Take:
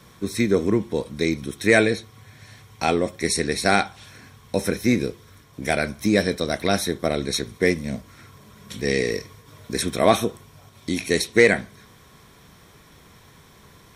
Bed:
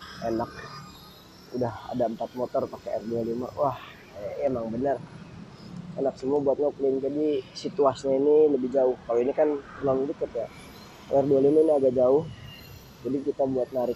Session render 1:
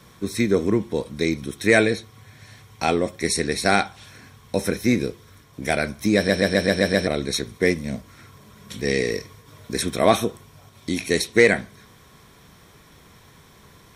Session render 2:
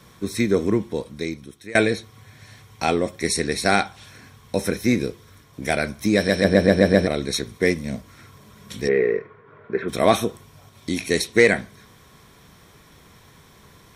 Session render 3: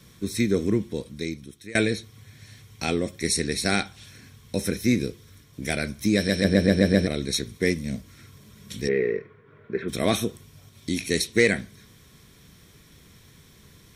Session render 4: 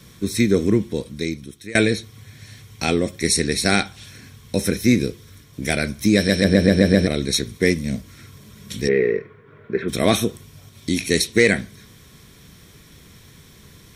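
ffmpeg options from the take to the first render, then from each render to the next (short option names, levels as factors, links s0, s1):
-filter_complex "[0:a]asplit=8[s0][s1][s2][s3][s4][s5][s6][s7];[s0]atrim=end=6.292[s8];[s1]atrim=start=6.158:end=6.292[s9];[s2]atrim=start=6.158:end=6.292[s10];[s3]atrim=start=6.158:end=6.292[s11];[s4]atrim=start=6.158:end=6.292[s12];[s5]atrim=start=6.158:end=6.292[s13];[s6]atrim=start=6.158:end=6.292[s14];[s7]atrim=start=7.068[s15];[s8][s9]acrossfade=d=0.004:c1=hsin:c2=hsin[s16];[s16][s10]acrossfade=d=0.004:c1=hsin:c2=hsin[s17];[s17][s11]acrossfade=d=0.004:c1=hsin:c2=hsin[s18];[s18][s12]acrossfade=d=0.004:c1=hsin:c2=hsin[s19];[s19][s13]acrossfade=d=0.004:c1=hsin:c2=hsin[s20];[s20][s14]acrossfade=d=0.004:c1=hsin:c2=hsin[s21];[s21][s15]acrossfade=d=0.004:c1=hsin:c2=hsin"
-filter_complex "[0:a]asettb=1/sr,asplit=3[s0][s1][s2];[s0]atrim=end=6.444[s3];[s1]atrim=start=6.44:end=7.06,asetpts=PTS-STARTPTS,afade=t=in:d=0.004:c=qsin,afade=t=out:st=0.616:d=0.004:c=qsin,tiltshelf=f=1500:g=5.5[s4];[s2]atrim=start=7.056[s5];[s3][s4]acrossfade=d=0.004:c1=hsin:c2=qsin[s6];[s6][s5]acrossfade=d=0.004:c1=qsin:c2=hsin,asplit=3[s7][s8][s9];[s7]afade=t=out:st=8.87:d=0.02[s10];[s8]highpass=170,equalizer=f=270:t=q:w=4:g=-8,equalizer=f=400:t=q:w=4:g=9,equalizer=f=1400:t=q:w=4:g=7,lowpass=f=2100:w=0.5412,lowpass=f=2100:w=1.3066,afade=t=in:st=8.87:d=0.02,afade=t=out:st=9.88:d=0.02[s11];[s9]afade=t=in:st=9.88:d=0.02[s12];[s10][s11][s12]amix=inputs=3:normalize=0,asplit=2[s13][s14];[s13]atrim=end=1.75,asetpts=PTS-STARTPTS,afade=t=out:st=0.75:d=1:silence=0.0668344[s15];[s14]atrim=start=1.75,asetpts=PTS-STARTPTS,afade=t=in:d=0.004:c=hsin:silence=0.0668344[s16];[s15][s16]concat=n=2:v=0:a=1"
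-af "equalizer=f=880:t=o:w=1.7:g=-11.5"
-af "volume=1.88,alimiter=limit=0.794:level=0:latency=1"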